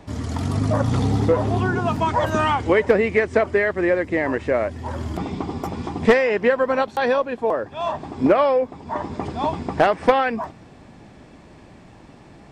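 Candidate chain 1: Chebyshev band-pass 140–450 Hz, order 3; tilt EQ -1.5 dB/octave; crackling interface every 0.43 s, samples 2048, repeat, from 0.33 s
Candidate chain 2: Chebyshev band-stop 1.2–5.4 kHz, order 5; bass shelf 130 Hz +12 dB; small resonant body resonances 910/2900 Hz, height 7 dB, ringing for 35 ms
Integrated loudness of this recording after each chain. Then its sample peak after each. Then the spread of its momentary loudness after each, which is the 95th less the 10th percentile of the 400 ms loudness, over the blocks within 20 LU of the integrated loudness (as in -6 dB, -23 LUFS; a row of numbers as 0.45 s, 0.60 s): -23.5 LUFS, -19.5 LUFS; -2.5 dBFS, -2.0 dBFS; 12 LU, 10 LU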